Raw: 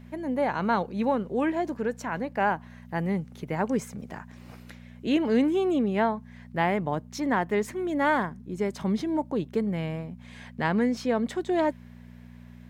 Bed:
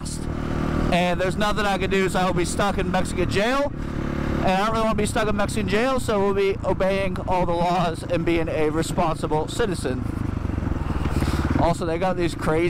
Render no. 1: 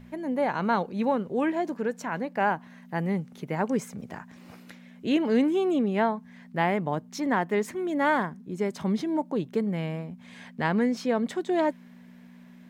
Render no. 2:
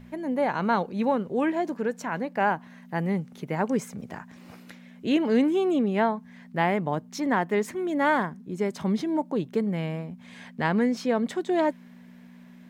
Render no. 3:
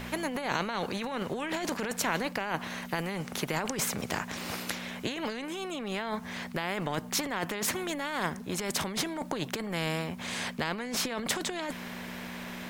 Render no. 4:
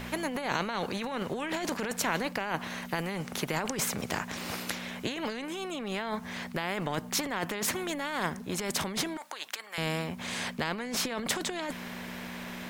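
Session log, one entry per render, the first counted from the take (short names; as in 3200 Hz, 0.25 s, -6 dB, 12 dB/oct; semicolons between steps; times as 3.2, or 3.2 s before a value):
de-hum 60 Hz, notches 2
gain +1 dB
negative-ratio compressor -30 dBFS, ratio -1; spectral compressor 2:1
9.17–9.78 HPF 1100 Hz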